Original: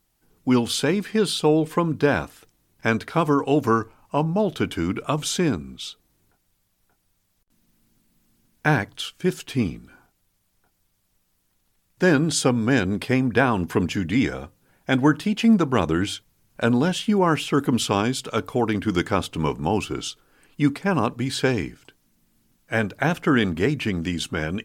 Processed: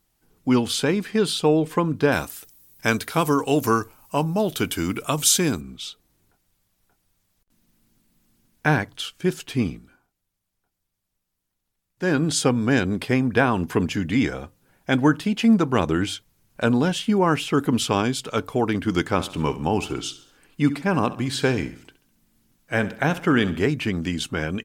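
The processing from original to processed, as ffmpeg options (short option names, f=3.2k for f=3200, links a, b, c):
-filter_complex "[0:a]asettb=1/sr,asplit=3[a][b][c];[a]atrim=end=2.124[d];[b]atrim=start=2.12:end=5.61,asetpts=PTS-STARTPTS,afade=t=in:d=0.004:c=qsin,afade=t=out:st=3.486:d=0.004:c=qsin,aemphasis=mode=production:type=75fm[e];[c]atrim=start=5.606[f];[d][e]acrossfade=d=0.004:c1=hsin:c2=qsin[g];[g][f]acrossfade=d=0.004:c1=qsin:c2=hsin,asplit=3[h][i][j];[h]afade=t=out:st=19.17:d=0.02[k];[i]aecho=1:1:68|136|204|272:0.168|0.0772|0.0355|0.0163,afade=t=in:st=19.17:d=0.02,afade=t=out:st=23.65:d=0.02[l];[j]afade=t=in:st=23.65:d=0.02[m];[k][l][m]amix=inputs=3:normalize=0,asplit=3[n][o][p];[n]atrim=end=9.99,asetpts=PTS-STARTPTS,afade=t=out:st=9.7:d=0.29:silence=0.298538[q];[o]atrim=start=9.99:end=11.96,asetpts=PTS-STARTPTS,volume=-10.5dB[r];[p]atrim=start=11.96,asetpts=PTS-STARTPTS,afade=t=in:d=0.29:silence=0.298538[s];[q][r][s]concat=n=3:v=0:a=1"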